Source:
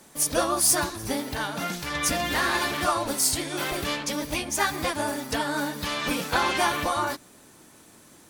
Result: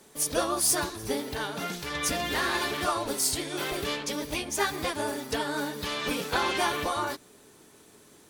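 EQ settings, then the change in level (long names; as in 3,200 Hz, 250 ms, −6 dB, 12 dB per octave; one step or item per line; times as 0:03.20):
parametric band 420 Hz +12 dB 0.2 octaves
parametric band 3,500 Hz +2.5 dB
−4.0 dB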